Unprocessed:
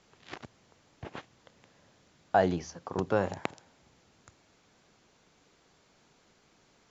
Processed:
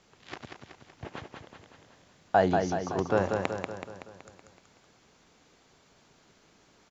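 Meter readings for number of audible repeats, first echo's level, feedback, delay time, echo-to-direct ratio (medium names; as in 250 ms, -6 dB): 6, -5.0 dB, 55%, 188 ms, -3.5 dB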